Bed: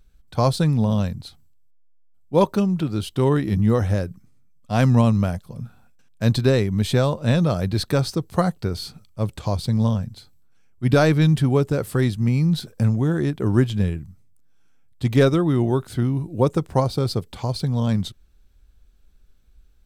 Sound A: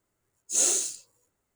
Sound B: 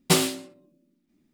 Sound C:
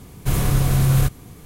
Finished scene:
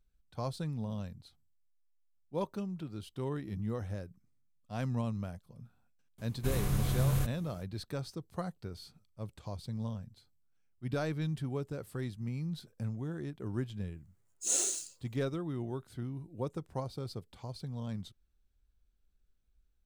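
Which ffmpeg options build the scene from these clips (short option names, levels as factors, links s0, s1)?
-filter_complex "[0:a]volume=0.126[s0];[3:a]atrim=end=1.45,asetpts=PTS-STARTPTS,volume=0.224,afade=t=in:d=0.004:c=hsin,afade=t=out:st=1.446:d=0.004:c=hsin,adelay=272538S[s1];[1:a]atrim=end=1.55,asetpts=PTS-STARTPTS,volume=0.447,afade=t=in:d=0.004:c=hsin,afade=t=out:st=1.546:d=0.004:c=hsin,adelay=13920[s2];[s0][s1][s2]amix=inputs=3:normalize=0"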